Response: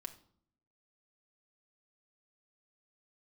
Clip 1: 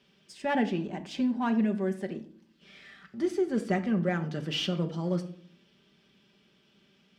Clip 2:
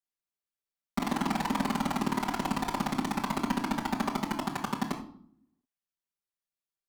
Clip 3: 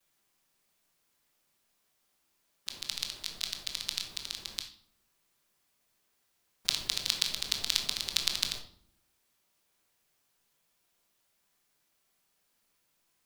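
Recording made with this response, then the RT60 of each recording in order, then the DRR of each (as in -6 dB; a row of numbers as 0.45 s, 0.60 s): 1; 0.60 s, 0.60 s, 0.60 s; 4.0 dB, -5.0 dB, -13.5 dB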